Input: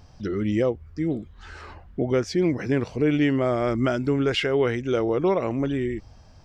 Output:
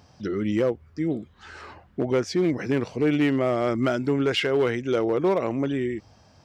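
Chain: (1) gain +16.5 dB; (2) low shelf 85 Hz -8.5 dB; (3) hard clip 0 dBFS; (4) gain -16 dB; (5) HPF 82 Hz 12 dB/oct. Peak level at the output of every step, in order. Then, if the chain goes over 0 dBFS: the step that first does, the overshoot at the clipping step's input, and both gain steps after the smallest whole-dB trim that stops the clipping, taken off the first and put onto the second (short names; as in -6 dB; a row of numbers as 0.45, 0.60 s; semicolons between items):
+4.5, +4.5, 0.0, -16.0, -12.5 dBFS; step 1, 4.5 dB; step 1 +11.5 dB, step 4 -11 dB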